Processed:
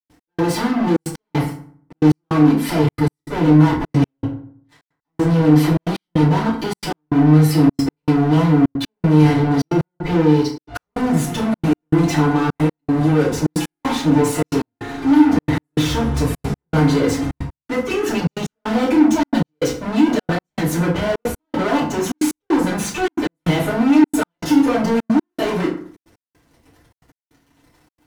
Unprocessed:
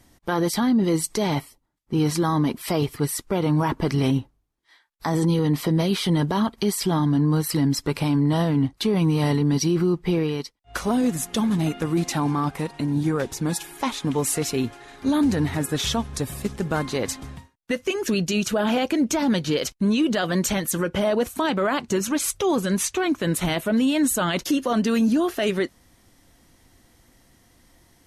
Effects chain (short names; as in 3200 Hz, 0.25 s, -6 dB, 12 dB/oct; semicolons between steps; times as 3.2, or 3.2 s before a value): sample leveller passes 5; high shelf 4200 Hz -9.5 dB; FDN reverb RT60 0.54 s, low-frequency decay 1.2×, high-frequency decay 0.6×, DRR -8.5 dB; step gate ".x..xxxxxx" 156 bpm -60 dB; gain -12 dB